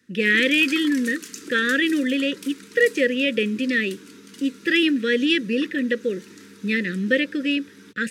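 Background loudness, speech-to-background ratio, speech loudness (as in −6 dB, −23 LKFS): −41.0 LKFS, 19.5 dB, −21.5 LKFS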